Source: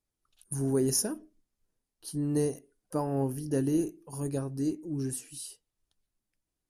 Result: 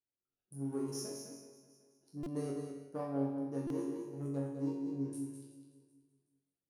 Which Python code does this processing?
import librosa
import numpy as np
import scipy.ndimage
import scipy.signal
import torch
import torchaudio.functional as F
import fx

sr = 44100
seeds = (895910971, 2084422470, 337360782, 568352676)

p1 = fx.wiener(x, sr, points=41)
p2 = fx.echo_feedback(p1, sr, ms=377, feedback_pct=31, wet_db=-18.0)
p3 = 10.0 ** (-28.0 / 20.0) * np.tanh(p2 / 10.0 ** (-28.0 / 20.0))
p4 = p2 + F.gain(torch.from_numpy(p3), -9.0).numpy()
p5 = fx.peak_eq(p4, sr, hz=5500.0, db=7.0, octaves=0.27)
p6 = fx.resonator_bank(p5, sr, root=42, chord='major', decay_s=0.73)
p7 = p6 + 10.0 ** (-7.0 / 20.0) * np.pad(p6, (int(206 * sr / 1000.0), 0))[:len(p6)]
p8 = fx.rider(p7, sr, range_db=3, speed_s=0.5)
p9 = fx.highpass(p8, sr, hz=300.0, slope=6)
p10 = fx.high_shelf(p9, sr, hz=2400.0, db=-11.5)
p11 = fx.buffer_glitch(p10, sr, at_s=(2.23, 3.67), block=128, repeats=10)
y = F.gain(torch.from_numpy(p11), 11.5).numpy()